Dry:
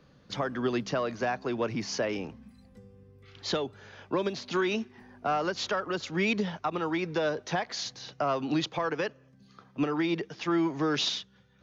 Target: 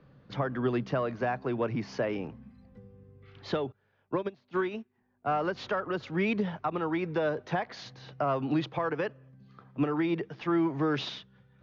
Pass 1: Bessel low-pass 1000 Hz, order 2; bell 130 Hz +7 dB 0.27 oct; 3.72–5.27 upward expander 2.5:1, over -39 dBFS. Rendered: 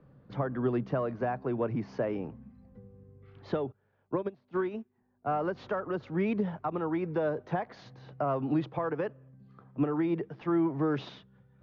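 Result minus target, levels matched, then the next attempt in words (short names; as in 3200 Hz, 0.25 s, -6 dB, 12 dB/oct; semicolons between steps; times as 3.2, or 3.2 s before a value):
2000 Hz band -5.0 dB
Bessel low-pass 2100 Hz, order 2; bell 130 Hz +7 dB 0.27 oct; 3.72–5.27 upward expander 2.5:1, over -39 dBFS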